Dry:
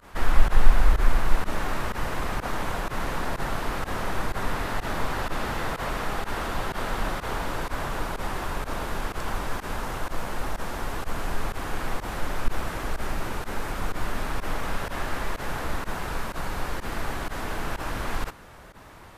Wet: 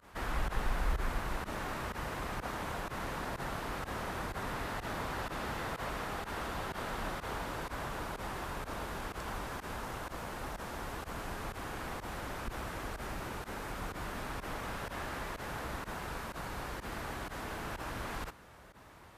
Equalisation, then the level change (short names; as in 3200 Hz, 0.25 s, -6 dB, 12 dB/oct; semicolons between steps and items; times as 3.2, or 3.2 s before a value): HPF 41 Hz; -8.0 dB